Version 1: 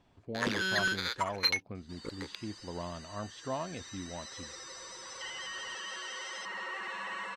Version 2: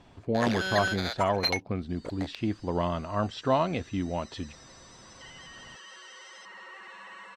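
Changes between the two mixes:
speech +11.5 dB
first sound: remove Butterworth band-reject 670 Hz, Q 1.5
second sound −7.0 dB

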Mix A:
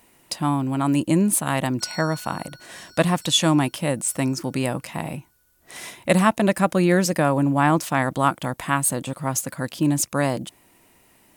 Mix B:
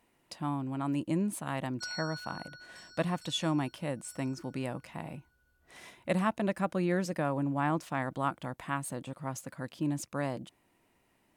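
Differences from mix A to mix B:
speech −11.5 dB
master: add high-shelf EQ 5,500 Hz −11 dB

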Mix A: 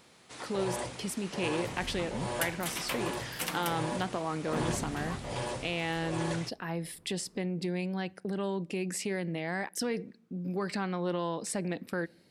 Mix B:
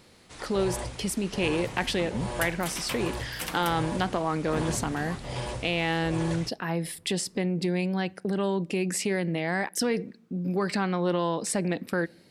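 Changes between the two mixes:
speech +6.0 dB
first sound: remove high-pass filter 150 Hz 12 dB per octave

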